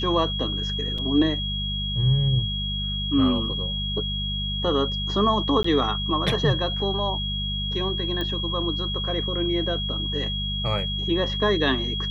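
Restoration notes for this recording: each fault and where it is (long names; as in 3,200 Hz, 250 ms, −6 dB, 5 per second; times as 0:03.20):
mains hum 50 Hz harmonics 4 −30 dBFS
whistle 3,300 Hz −28 dBFS
0:00.98: drop-out 4.3 ms
0:05.63–0:05.64: drop-out 14 ms
0:08.21: click −16 dBFS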